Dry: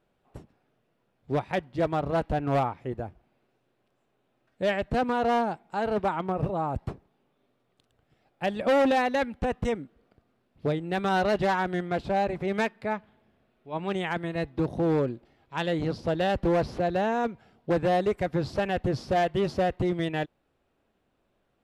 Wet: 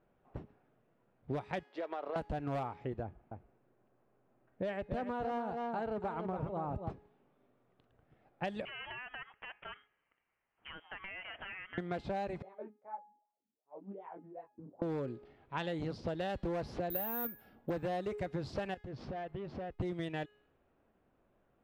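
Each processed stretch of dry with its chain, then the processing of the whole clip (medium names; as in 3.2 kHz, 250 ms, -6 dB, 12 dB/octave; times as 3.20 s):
1.63–2.16 s: high-pass 390 Hz 24 dB/octave + compression 4:1, threshold -34 dBFS
3.03–6.90 s: treble shelf 2.8 kHz -11 dB + delay 282 ms -8 dB
8.65–11.78 s: high-pass 1.3 kHz + frequency inversion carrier 3.5 kHz + compression 16:1, threshold -39 dBFS
12.42–14.82 s: companding laws mixed up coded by A + wah-wah 2.6 Hz 210–1000 Hz, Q 11 + detune thickener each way 23 cents
16.90–17.70 s: comb 3.6 ms, depth 41% + careless resampling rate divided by 3×, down filtered, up zero stuff + tape noise reduction on one side only decoder only
18.74–19.79 s: hysteresis with a dead band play -46 dBFS + compression 16:1, threshold -38 dBFS
whole clip: de-hum 418.1 Hz, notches 40; level-controlled noise filter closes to 1.9 kHz, open at -22.5 dBFS; compression 6:1, threshold -35 dBFS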